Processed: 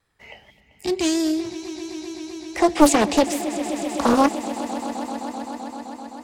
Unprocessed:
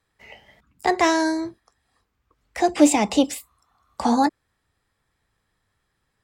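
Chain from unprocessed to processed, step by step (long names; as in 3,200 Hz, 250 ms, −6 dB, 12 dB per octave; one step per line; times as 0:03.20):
gain on a spectral selection 0:00.50–0:01.45, 390–2,200 Hz −18 dB
echo that builds up and dies away 129 ms, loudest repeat 5, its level −16.5 dB
pitch vibrato 4.4 Hz 43 cents
highs frequency-modulated by the lows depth 0.72 ms
level +2 dB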